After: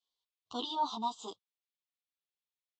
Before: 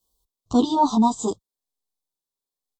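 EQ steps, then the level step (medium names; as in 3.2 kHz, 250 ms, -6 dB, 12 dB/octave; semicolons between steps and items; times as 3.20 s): band-pass filter 2.7 kHz, Q 2; distance through air 91 m; +2.5 dB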